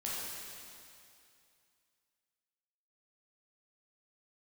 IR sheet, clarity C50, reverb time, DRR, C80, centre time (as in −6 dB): −3.0 dB, 2.5 s, −7.0 dB, −1.0 dB, 158 ms